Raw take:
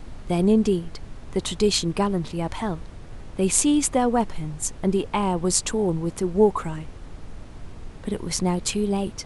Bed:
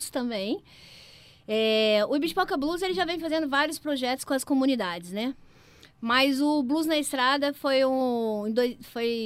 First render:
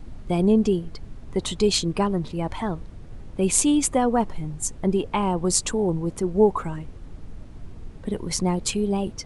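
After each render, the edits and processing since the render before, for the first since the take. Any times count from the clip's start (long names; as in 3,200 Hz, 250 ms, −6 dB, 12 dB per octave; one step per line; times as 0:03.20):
broadband denoise 7 dB, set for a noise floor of −41 dBFS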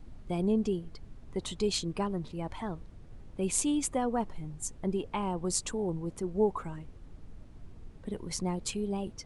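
level −9.5 dB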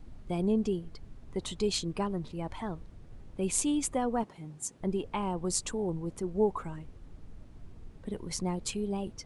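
0:04.23–0:04.81: high-pass filter 160 Hz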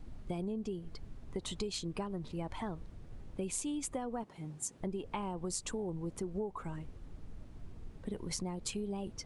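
downward compressor 12 to 1, threshold −34 dBFS, peak gain reduction 13.5 dB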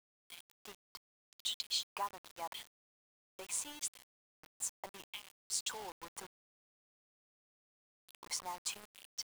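auto-filter high-pass square 0.79 Hz 940–3,300 Hz
bit-depth reduction 8 bits, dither none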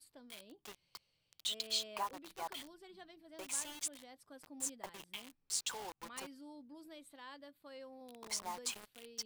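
mix in bed −29 dB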